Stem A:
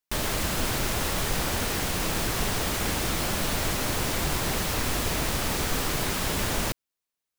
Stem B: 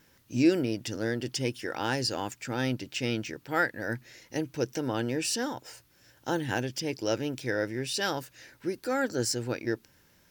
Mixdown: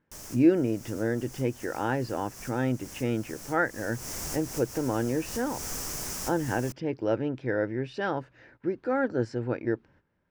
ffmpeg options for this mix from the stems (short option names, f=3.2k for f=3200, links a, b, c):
-filter_complex "[0:a]highshelf=f=4.7k:t=q:w=3:g=6.5,volume=-11dB,afade=t=in:st=3.57:d=0.72:silence=0.375837[a];[1:a]lowpass=1.5k,volume=2.5dB,asplit=2[b][c];[c]apad=whole_len=325616[d];[a][d]sidechaincompress=threshold=-33dB:ratio=8:attack=12:release=222[e];[e][b]amix=inputs=2:normalize=0,agate=range=-12dB:threshold=-56dB:ratio=16:detection=peak"